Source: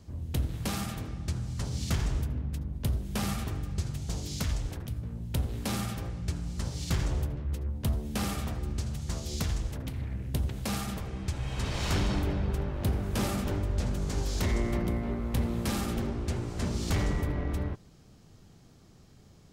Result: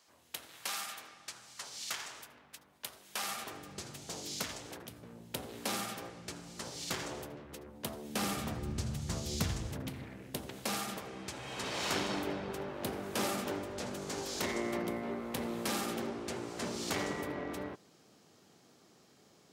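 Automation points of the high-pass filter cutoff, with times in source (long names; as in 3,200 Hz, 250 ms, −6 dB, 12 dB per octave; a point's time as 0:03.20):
0:03.08 1,000 Hz
0:03.71 350 Hz
0:08.02 350 Hz
0:08.69 98 Hz
0:09.67 98 Hz
0:10.17 310 Hz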